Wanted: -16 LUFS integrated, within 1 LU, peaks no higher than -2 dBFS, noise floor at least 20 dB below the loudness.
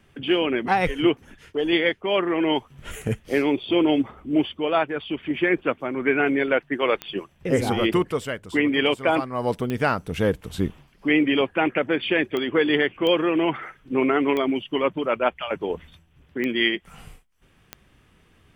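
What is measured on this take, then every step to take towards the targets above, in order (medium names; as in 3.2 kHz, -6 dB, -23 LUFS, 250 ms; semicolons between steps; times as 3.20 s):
clicks found 7; loudness -23.5 LUFS; peak level -7.5 dBFS; loudness target -16.0 LUFS
-> de-click; trim +7.5 dB; peak limiter -2 dBFS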